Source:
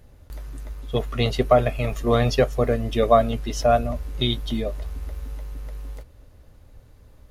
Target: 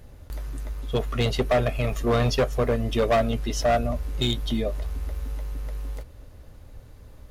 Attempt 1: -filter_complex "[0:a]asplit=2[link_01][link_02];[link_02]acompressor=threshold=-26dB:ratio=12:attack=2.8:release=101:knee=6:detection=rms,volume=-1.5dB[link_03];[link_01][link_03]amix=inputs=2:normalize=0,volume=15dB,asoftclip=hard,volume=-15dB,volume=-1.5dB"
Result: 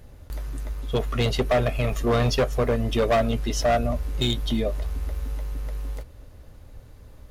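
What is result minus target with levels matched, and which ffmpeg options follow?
downward compressor: peak gain reduction −6.5 dB
-filter_complex "[0:a]asplit=2[link_01][link_02];[link_02]acompressor=threshold=-33dB:ratio=12:attack=2.8:release=101:knee=6:detection=rms,volume=-1.5dB[link_03];[link_01][link_03]amix=inputs=2:normalize=0,volume=15dB,asoftclip=hard,volume=-15dB,volume=-1.5dB"

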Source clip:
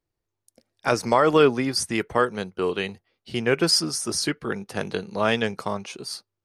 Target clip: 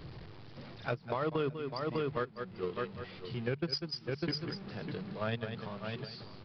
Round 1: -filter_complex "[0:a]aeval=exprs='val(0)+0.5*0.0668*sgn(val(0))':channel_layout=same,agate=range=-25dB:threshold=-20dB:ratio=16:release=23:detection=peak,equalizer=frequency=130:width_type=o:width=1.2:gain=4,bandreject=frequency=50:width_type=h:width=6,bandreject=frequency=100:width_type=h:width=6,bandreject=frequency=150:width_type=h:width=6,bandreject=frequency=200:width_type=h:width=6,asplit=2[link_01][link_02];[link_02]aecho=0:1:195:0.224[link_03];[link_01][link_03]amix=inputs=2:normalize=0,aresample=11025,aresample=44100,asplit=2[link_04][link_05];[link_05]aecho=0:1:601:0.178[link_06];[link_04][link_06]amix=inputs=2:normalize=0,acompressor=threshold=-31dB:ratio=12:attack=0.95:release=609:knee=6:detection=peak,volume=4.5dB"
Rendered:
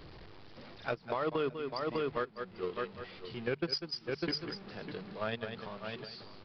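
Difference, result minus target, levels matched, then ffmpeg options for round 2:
125 Hz band −6.5 dB
-filter_complex "[0:a]aeval=exprs='val(0)+0.5*0.0668*sgn(val(0))':channel_layout=same,agate=range=-25dB:threshold=-20dB:ratio=16:release=23:detection=peak,equalizer=frequency=130:width_type=o:width=1.2:gain=13.5,bandreject=frequency=50:width_type=h:width=6,bandreject=frequency=100:width_type=h:width=6,bandreject=frequency=150:width_type=h:width=6,bandreject=frequency=200:width_type=h:width=6,asplit=2[link_01][link_02];[link_02]aecho=0:1:195:0.224[link_03];[link_01][link_03]amix=inputs=2:normalize=0,aresample=11025,aresample=44100,asplit=2[link_04][link_05];[link_05]aecho=0:1:601:0.178[link_06];[link_04][link_06]amix=inputs=2:normalize=0,acompressor=threshold=-31dB:ratio=12:attack=0.95:release=609:knee=6:detection=peak,volume=4.5dB"

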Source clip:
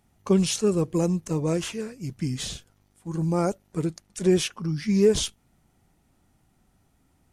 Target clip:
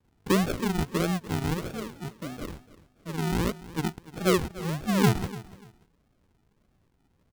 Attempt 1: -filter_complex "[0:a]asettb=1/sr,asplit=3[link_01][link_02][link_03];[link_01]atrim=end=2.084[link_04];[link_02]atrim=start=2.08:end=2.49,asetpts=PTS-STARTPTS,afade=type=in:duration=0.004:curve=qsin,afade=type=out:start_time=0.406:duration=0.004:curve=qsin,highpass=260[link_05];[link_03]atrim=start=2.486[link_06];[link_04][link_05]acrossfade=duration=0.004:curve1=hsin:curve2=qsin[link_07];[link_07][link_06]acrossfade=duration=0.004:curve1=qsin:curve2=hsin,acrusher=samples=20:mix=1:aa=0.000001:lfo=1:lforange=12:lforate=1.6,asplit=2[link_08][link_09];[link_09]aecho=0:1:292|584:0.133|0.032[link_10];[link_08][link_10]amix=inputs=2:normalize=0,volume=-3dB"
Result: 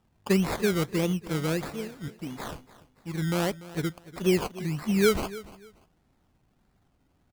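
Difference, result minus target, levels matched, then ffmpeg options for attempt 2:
sample-and-hold swept by an LFO: distortion −15 dB
-filter_complex "[0:a]asettb=1/sr,asplit=3[link_01][link_02][link_03];[link_01]atrim=end=2.084[link_04];[link_02]atrim=start=2.08:end=2.49,asetpts=PTS-STARTPTS,afade=type=in:duration=0.004:curve=qsin,afade=type=out:start_time=0.406:duration=0.004:curve=qsin,highpass=260[link_05];[link_03]atrim=start=2.486[link_06];[link_04][link_05]acrossfade=duration=0.004:curve1=hsin:curve2=qsin[link_07];[link_07][link_06]acrossfade=duration=0.004:curve1=qsin:curve2=hsin,acrusher=samples=63:mix=1:aa=0.000001:lfo=1:lforange=37.8:lforate=1.6,asplit=2[link_08][link_09];[link_09]aecho=0:1:292|584:0.133|0.032[link_10];[link_08][link_10]amix=inputs=2:normalize=0,volume=-3dB"

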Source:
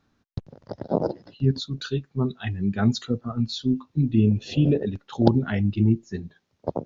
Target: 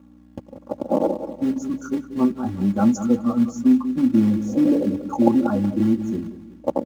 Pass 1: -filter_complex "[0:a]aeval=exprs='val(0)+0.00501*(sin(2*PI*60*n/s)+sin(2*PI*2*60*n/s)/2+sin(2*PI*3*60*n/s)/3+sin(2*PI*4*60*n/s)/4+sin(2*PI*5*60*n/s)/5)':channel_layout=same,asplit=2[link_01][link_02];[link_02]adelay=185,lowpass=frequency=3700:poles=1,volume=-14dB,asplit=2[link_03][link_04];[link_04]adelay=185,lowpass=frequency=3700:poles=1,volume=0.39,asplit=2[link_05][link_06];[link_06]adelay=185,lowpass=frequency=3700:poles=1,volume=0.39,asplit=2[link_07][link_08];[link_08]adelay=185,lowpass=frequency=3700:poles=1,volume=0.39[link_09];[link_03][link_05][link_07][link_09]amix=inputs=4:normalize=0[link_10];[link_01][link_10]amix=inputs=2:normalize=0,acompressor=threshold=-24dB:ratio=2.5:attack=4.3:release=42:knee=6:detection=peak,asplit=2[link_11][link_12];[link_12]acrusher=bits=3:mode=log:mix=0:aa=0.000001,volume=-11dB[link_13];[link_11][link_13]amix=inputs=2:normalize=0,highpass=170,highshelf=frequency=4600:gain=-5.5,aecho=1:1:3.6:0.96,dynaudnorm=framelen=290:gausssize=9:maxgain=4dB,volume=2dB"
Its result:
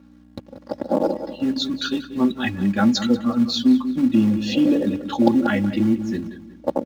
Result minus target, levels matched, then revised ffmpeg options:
4,000 Hz band +19.0 dB
-filter_complex "[0:a]aeval=exprs='val(0)+0.00501*(sin(2*PI*60*n/s)+sin(2*PI*2*60*n/s)/2+sin(2*PI*3*60*n/s)/3+sin(2*PI*4*60*n/s)/4+sin(2*PI*5*60*n/s)/5)':channel_layout=same,asplit=2[link_01][link_02];[link_02]adelay=185,lowpass=frequency=3700:poles=1,volume=-14dB,asplit=2[link_03][link_04];[link_04]adelay=185,lowpass=frequency=3700:poles=1,volume=0.39,asplit=2[link_05][link_06];[link_06]adelay=185,lowpass=frequency=3700:poles=1,volume=0.39,asplit=2[link_07][link_08];[link_08]adelay=185,lowpass=frequency=3700:poles=1,volume=0.39[link_09];[link_03][link_05][link_07][link_09]amix=inputs=4:normalize=0[link_10];[link_01][link_10]amix=inputs=2:normalize=0,acompressor=threshold=-24dB:ratio=2.5:attack=4.3:release=42:knee=6:detection=peak,asuperstop=centerf=2900:order=12:qfactor=0.58,asplit=2[link_11][link_12];[link_12]acrusher=bits=3:mode=log:mix=0:aa=0.000001,volume=-11dB[link_13];[link_11][link_13]amix=inputs=2:normalize=0,highpass=170,highshelf=frequency=4600:gain=-5.5,aecho=1:1:3.6:0.96,dynaudnorm=framelen=290:gausssize=9:maxgain=4dB,volume=2dB"

